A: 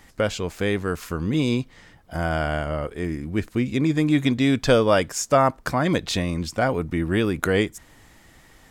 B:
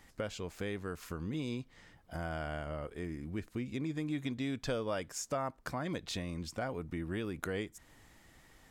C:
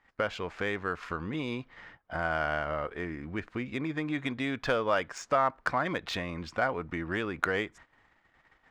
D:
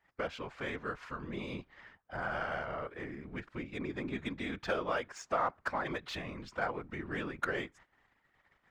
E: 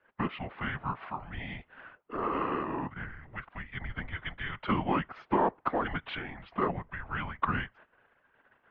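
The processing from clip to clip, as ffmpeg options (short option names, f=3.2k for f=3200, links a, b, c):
-af "acompressor=threshold=-30dB:ratio=2,volume=-9dB"
-af "equalizer=f=1.4k:w=0.42:g=13.5,adynamicsmooth=sensitivity=3.5:basefreq=4.3k,agate=range=-17dB:threshold=-51dB:ratio=16:detection=peak"
-af "afftfilt=real='hypot(re,im)*cos(2*PI*random(0))':imag='hypot(re,im)*sin(2*PI*random(1))':win_size=512:overlap=0.75"
-af "highpass=f=370:t=q:w=0.5412,highpass=f=370:t=q:w=1.307,lowpass=f=3.5k:t=q:w=0.5176,lowpass=f=3.5k:t=q:w=0.7071,lowpass=f=3.5k:t=q:w=1.932,afreqshift=-310,volume=5.5dB"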